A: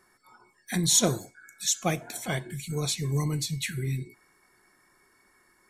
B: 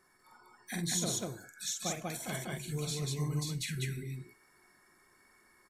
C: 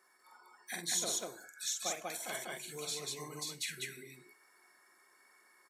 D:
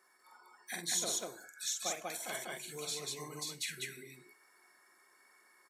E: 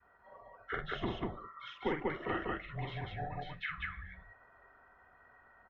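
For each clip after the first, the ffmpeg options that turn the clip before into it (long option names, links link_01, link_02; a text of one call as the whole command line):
ffmpeg -i in.wav -filter_complex "[0:a]acompressor=threshold=-35dB:ratio=2,asplit=2[link_01][link_02];[link_02]aecho=0:1:46.65|192.4:0.631|0.891[link_03];[link_01][link_03]amix=inputs=2:normalize=0,volume=-5dB" out.wav
ffmpeg -i in.wav -af "highpass=450" out.wav
ffmpeg -i in.wav -af anull out.wav
ffmpeg -i in.wav -af "adynamicequalizer=threshold=0.00112:dfrequency=970:dqfactor=1.5:tfrequency=970:tqfactor=1.5:attack=5:release=100:ratio=0.375:range=3:mode=boostabove:tftype=bell,highpass=frequency=160:width_type=q:width=0.5412,highpass=frequency=160:width_type=q:width=1.307,lowpass=frequency=2900:width_type=q:width=0.5176,lowpass=frequency=2900:width_type=q:width=0.7071,lowpass=frequency=2900:width_type=q:width=1.932,afreqshift=-320,volume=4.5dB" out.wav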